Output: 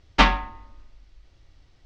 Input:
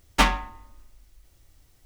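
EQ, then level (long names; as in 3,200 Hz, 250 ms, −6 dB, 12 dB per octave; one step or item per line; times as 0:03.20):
low-pass filter 5,000 Hz 24 dB per octave
+3.0 dB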